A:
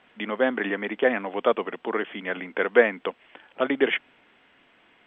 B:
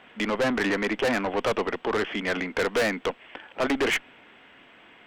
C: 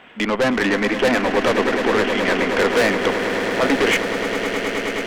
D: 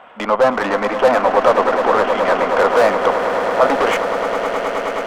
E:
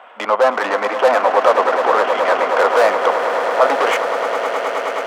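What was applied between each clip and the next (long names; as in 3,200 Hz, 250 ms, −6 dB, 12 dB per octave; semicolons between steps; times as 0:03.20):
tube saturation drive 28 dB, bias 0.3; level +7.5 dB
echo that builds up and dies away 105 ms, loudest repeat 8, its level −12 dB; level +6 dB
flat-topped bell 840 Hz +13 dB; level −4.5 dB
high-pass filter 420 Hz 12 dB per octave; level +1 dB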